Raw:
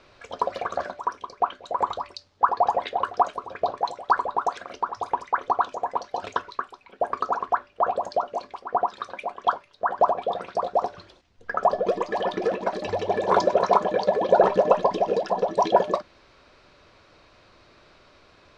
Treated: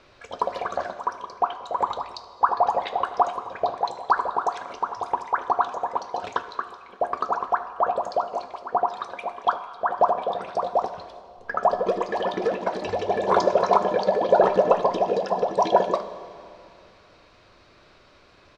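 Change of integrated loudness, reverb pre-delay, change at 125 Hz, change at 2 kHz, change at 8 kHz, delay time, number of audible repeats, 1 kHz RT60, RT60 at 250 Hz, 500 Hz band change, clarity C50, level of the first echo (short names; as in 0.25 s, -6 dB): +0.5 dB, 9 ms, +0.5 dB, +0.5 dB, n/a, 75 ms, 1, 2.3 s, 2.7 s, +0.5 dB, 11.5 dB, -19.0 dB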